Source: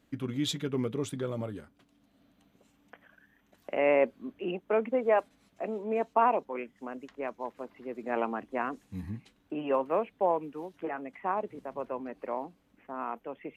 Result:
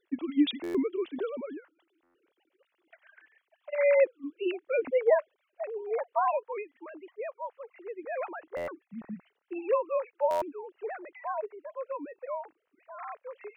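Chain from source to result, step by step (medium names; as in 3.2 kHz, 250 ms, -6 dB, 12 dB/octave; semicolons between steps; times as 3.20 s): formants replaced by sine waves; treble shelf 2.1 kHz +8.5 dB, from 5.10 s +4 dB; buffer glitch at 0.63/2.03/8.56/10.30 s, samples 512, times 9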